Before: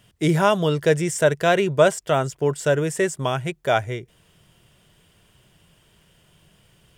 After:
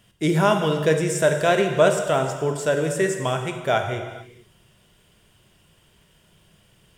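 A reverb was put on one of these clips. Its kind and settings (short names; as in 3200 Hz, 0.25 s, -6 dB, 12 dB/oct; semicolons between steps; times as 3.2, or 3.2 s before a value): non-linear reverb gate 0.49 s falling, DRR 4.5 dB; gain -1.5 dB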